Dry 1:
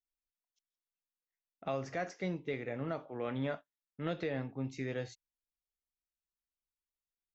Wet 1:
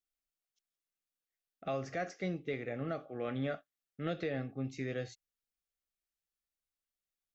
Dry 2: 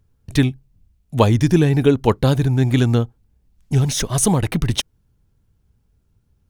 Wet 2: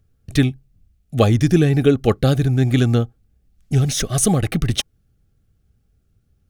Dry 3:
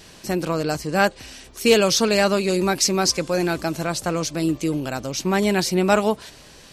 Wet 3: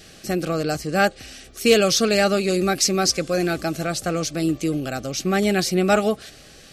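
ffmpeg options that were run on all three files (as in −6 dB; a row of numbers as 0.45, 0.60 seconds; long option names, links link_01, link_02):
-af "asuperstop=centerf=950:order=12:qfactor=4"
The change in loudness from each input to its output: 0.0, 0.0, 0.0 LU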